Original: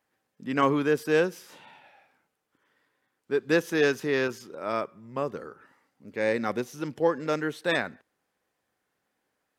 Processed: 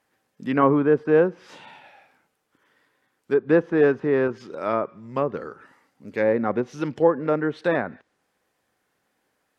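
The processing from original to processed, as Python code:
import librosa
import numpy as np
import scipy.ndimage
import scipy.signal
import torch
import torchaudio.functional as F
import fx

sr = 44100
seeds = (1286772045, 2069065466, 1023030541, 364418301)

y = fx.env_lowpass_down(x, sr, base_hz=1200.0, full_db=-24.0)
y = y * librosa.db_to_amplitude(6.0)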